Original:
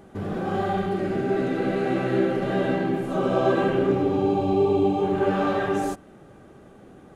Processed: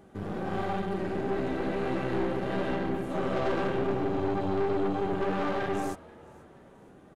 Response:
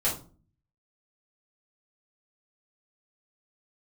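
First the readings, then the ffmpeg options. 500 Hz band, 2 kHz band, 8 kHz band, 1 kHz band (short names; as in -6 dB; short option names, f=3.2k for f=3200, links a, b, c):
-7.0 dB, -5.0 dB, n/a, -6.0 dB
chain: -filter_complex "[0:a]aeval=exprs='(tanh(14.1*val(0)+0.75)-tanh(0.75))/14.1':c=same,asplit=4[a][b][c][d];[b]adelay=482,afreqshift=80,volume=-23.5dB[e];[c]adelay=964,afreqshift=160,volume=-30.2dB[f];[d]adelay=1446,afreqshift=240,volume=-37dB[g];[a][e][f][g]amix=inputs=4:normalize=0,volume=-1.5dB"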